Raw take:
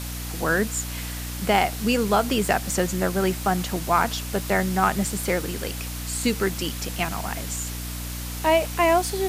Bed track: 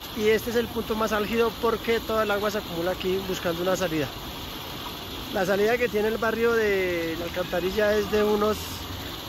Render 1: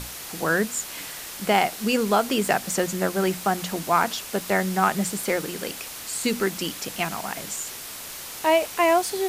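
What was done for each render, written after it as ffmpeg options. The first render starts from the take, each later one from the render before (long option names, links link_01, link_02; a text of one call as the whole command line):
ffmpeg -i in.wav -af "bandreject=frequency=60:width_type=h:width=6,bandreject=frequency=120:width_type=h:width=6,bandreject=frequency=180:width_type=h:width=6,bandreject=frequency=240:width_type=h:width=6,bandreject=frequency=300:width_type=h:width=6" out.wav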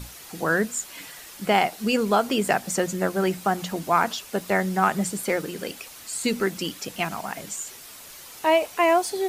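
ffmpeg -i in.wav -af "afftdn=noise_reduction=8:noise_floor=-37" out.wav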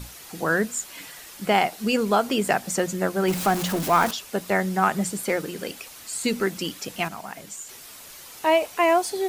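ffmpeg -i in.wav -filter_complex "[0:a]asettb=1/sr,asplit=3[link_01][link_02][link_03];[link_01]atrim=end=3.284[link_04];[link_02]atrim=start=3.28:end=4.11,asetpts=PTS-STARTPTS,afade=type=in:duration=0.004:curve=qsin,afade=type=out:start_time=0.826:duration=0.004:curve=qsin,aeval=exprs='val(0)+0.5*0.0531*sgn(val(0))':channel_layout=same[link_05];[link_03]atrim=start=4.106[link_06];[link_04][link_05]acrossfade=duration=0.004:curve1=hsin:curve2=qsin[link_07];[link_07][link_06]acrossfade=duration=0.004:curve1=qsin:curve2=hsin,asplit=3[link_08][link_09][link_10];[link_08]atrim=end=7.082[link_11];[link_09]atrim=start=7.078:end=7.692,asetpts=PTS-STARTPTS,volume=-4.5dB[link_12];[link_10]atrim=start=7.688[link_13];[link_11][link_12]acrossfade=duration=0.004:curve1=hsin:curve2=hsin[link_14];[link_14][link_13]acrossfade=duration=0.004:curve1=hsin:curve2=hsin" out.wav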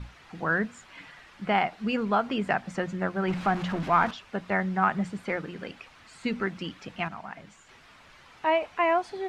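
ffmpeg -i in.wav -af "lowpass=2100,equalizer=frequency=430:width_type=o:width=1.7:gain=-8" out.wav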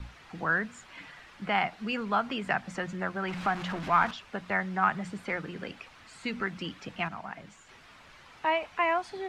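ffmpeg -i in.wav -filter_complex "[0:a]acrossover=split=270|760|1600[link_01][link_02][link_03][link_04];[link_01]alimiter=level_in=10.5dB:limit=-24dB:level=0:latency=1,volume=-10.5dB[link_05];[link_02]acompressor=threshold=-39dB:ratio=6[link_06];[link_05][link_06][link_03][link_04]amix=inputs=4:normalize=0" out.wav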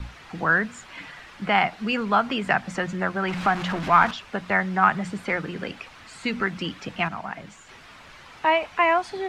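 ffmpeg -i in.wav -af "volume=7dB" out.wav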